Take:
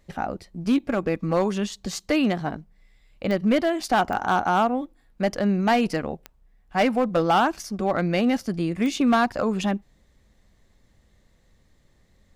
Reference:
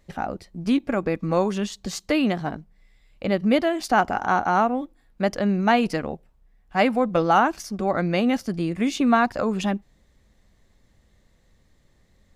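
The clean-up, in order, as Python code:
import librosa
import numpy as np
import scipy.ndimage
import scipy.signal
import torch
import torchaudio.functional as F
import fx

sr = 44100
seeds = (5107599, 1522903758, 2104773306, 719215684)

y = fx.fix_declip(x, sr, threshold_db=-14.0)
y = fx.fix_declick_ar(y, sr, threshold=10.0)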